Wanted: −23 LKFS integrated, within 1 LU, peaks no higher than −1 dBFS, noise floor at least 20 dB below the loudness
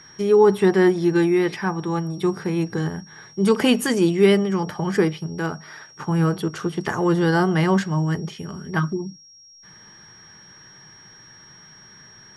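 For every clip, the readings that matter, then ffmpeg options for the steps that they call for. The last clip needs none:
interfering tone 5,600 Hz; level of the tone −46 dBFS; integrated loudness −21.0 LKFS; sample peak −5.0 dBFS; target loudness −23.0 LKFS
→ -af "bandreject=frequency=5600:width=30"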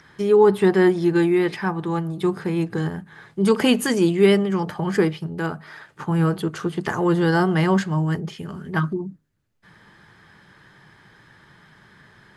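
interfering tone none found; integrated loudness −21.0 LKFS; sample peak −5.0 dBFS; target loudness −23.0 LKFS
→ -af "volume=-2dB"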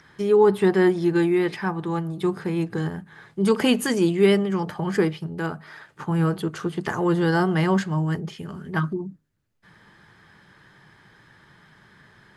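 integrated loudness −23.0 LKFS; sample peak −7.0 dBFS; background noise floor −56 dBFS

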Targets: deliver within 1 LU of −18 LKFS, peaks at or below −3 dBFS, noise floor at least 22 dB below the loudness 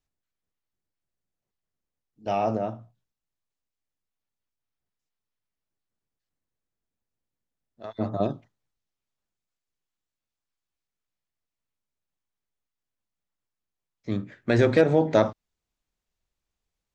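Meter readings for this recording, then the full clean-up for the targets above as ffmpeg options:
integrated loudness −25.0 LKFS; sample peak −7.5 dBFS; target loudness −18.0 LKFS
→ -af "volume=7dB,alimiter=limit=-3dB:level=0:latency=1"

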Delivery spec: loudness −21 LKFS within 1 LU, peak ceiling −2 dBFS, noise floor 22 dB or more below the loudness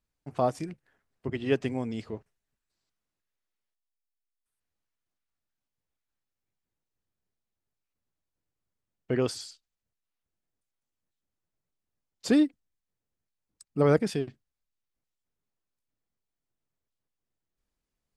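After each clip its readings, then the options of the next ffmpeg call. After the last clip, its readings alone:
integrated loudness −28.5 LKFS; sample peak −10.0 dBFS; target loudness −21.0 LKFS
→ -af "volume=7.5dB"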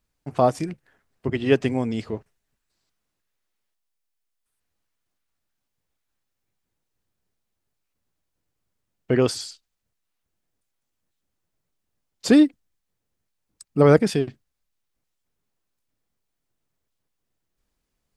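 integrated loudness −21.5 LKFS; sample peak −2.5 dBFS; background noise floor −80 dBFS

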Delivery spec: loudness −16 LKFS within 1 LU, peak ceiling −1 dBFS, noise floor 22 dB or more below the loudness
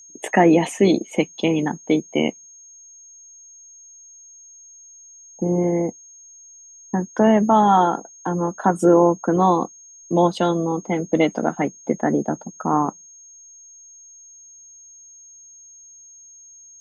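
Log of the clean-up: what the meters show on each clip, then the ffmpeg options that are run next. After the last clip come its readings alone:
interfering tone 6,500 Hz; level of the tone −43 dBFS; integrated loudness −20.0 LKFS; sample peak −4.0 dBFS; target loudness −16.0 LKFS
→ -af "bandreject=frequency=6500:width=30"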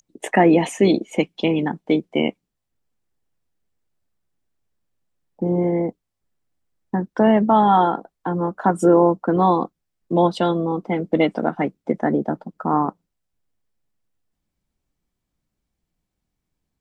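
interfering tone none found; integrated loudness −20.0 LKFS; sample peak −4.0 dBFS; target loudness −16.0 LKFS
→ -af "volume=4dB,alimiter=limit=-1dB:level=0:latency=1"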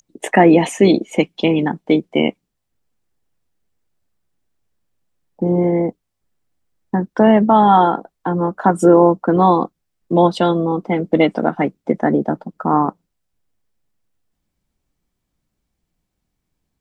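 integrated loudness −16.0 LKFS; sample peak −1.0 dBFS; background noise floor −76 dBFS

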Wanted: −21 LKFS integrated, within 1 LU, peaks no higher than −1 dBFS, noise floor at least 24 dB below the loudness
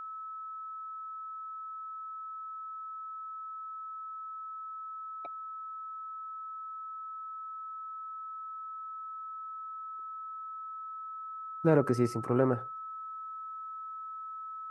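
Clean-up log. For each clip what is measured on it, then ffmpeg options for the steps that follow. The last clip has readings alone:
interfering tone 1,300 Hz; level of the tone −39 dBFS; integrated loudness −37.0 LKFS; sample peak −11.5 dBFS; target loudness −21.0 LKFS
→ -af "bandreject=frequency=1300:width=30"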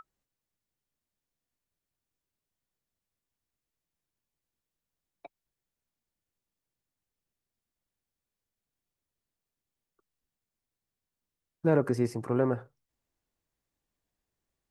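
interfering tone none found; integrated loudness −29.0 LKFS; sample peak −12.0 dBFS; target loudness −21.0 LKFS
→ -af "volume=8dB"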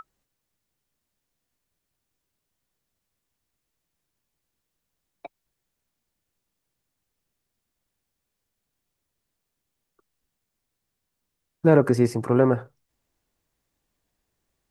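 integrated loudness −21.0 LKFS; sample peak −4.0 dBFS; background noise floor −82 dBFS

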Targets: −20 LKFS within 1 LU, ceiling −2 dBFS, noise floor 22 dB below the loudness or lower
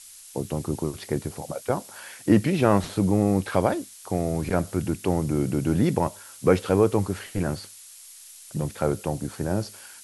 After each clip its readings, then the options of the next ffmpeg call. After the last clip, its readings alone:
background noise floor −47 dBFS; target noise floor −48 dBFS; integrated loudness −25.5 LKFS; sample peak −5.0 dBFS; target loudness −20.0 LKFS
→ -af "afftdn=noise_reduction=6:noise_floor=-47"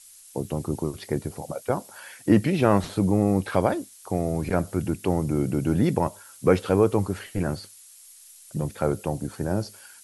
background noise floor −50 dBFS; integrated loudness −25.5 LKFS; sample peak −5.0 dBFS; target loudness −20.0 LKFS
→ -af "volume=5.5dB,alimiter=limit=-2dB:level=0:latency=1"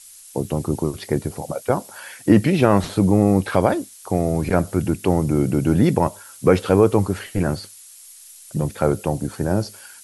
integrated loudness −20.5 LKFS; sample peak −2.0 dBFS; background noise floor −44 dBFS

